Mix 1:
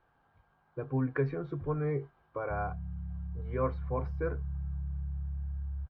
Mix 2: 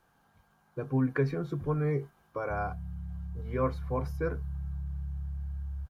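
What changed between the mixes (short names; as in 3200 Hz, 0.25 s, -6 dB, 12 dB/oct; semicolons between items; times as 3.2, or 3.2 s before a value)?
speech: add bell 200 Hz +9 dB 0.64 oct; master: remove air absorption 340 m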